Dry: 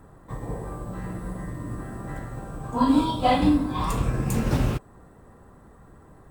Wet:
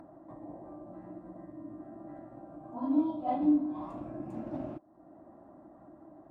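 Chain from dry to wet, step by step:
pair of resonant band-passes 450 Hz, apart 1 octave
upward compression, threshold −41 dBFS
level that may rise only so fast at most 190 dB per second
level −1.5 dB

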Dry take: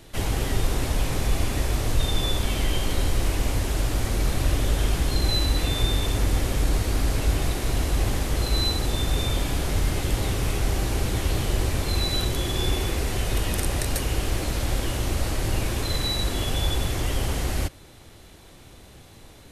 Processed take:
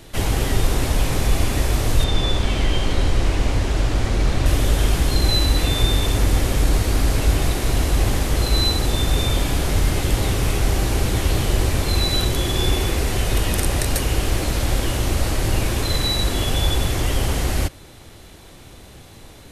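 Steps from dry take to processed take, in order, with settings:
0:02.04–0:04.46: high-frequency loss of the air 66 metres
level +5 dB

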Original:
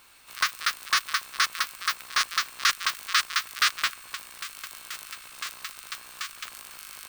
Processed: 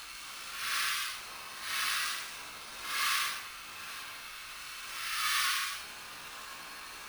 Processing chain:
slices reordered back to front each 105 ms, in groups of 6
extreme stretch with random phases 6.2×, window 0.10 s, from 0:04.83
bad sample-rate conversion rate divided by 3×, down filtered, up hold
level +3 dB

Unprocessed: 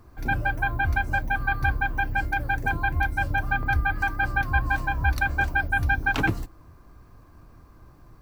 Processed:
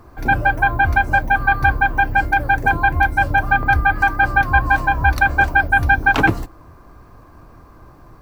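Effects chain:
parametric band 750 Hz +6.5 dB 2.8 octaves
level +5 dB

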